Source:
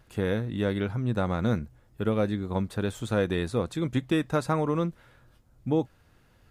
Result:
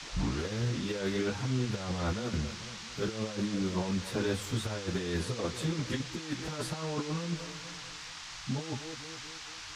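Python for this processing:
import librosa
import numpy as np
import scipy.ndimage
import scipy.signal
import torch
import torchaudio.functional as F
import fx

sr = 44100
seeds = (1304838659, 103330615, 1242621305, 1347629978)

y = fx.tape_start_head(x, sr, length_s=0.31)
y = fx.echo_wet_lowpass(y, sr, ms=149, feedback_pct=52, hz=2600.0, wet_db=-20)
y = fx.stretch_vocoder_free(y, sr, factor=1.5)
y = fx.over_compress(y, sr, threshold_db=-32.0, ratio=-0.5)
y = fx.dmg_noise_band(y, sr, seeds[0], low_hz=800.0, high_hz=6300.0, level_db=-45.0)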